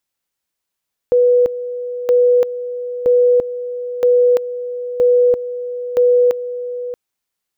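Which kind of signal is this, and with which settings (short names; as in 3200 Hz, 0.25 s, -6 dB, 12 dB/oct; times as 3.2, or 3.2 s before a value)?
two-level tone 491 Hz -8.5 dBFS, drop 13 dB, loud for 0.34 s, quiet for 0.63 s, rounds 6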